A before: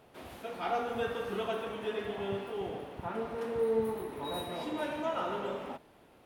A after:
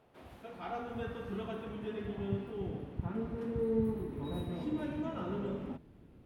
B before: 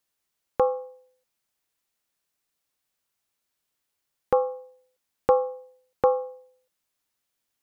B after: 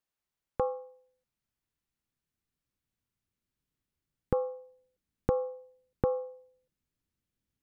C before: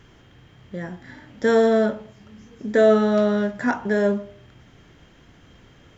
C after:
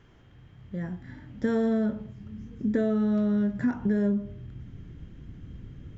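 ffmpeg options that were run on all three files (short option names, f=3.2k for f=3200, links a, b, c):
-af "asubboost=boost=8.5:cutoff=250,acompressor=threshold=-16dB:ratio=6,highshelf=f=3.2k:g=-7.5,volume=-6dB"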